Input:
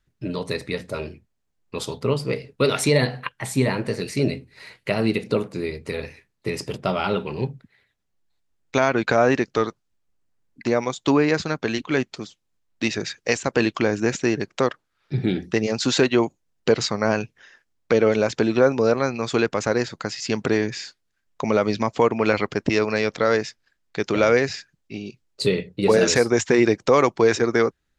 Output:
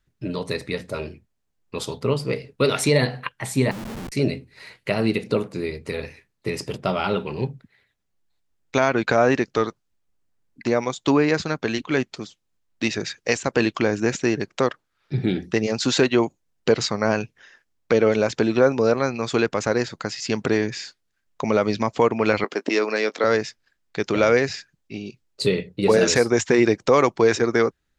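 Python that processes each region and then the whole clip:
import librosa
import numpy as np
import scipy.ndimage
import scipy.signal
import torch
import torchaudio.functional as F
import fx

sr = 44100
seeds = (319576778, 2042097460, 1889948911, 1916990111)

y = fx.chain(x, sr, fx.bandpass_q(hz=230.0, q=2.1),
    fx.schmitt(flips_db=-41.0), at=(3.71, 4.12))
y = fx.chain(y, sr, fx.highpass(hz=260.0, slope=24),
    fx.doubler(ms=18.0, db=-14), at=(22.44, 23.24))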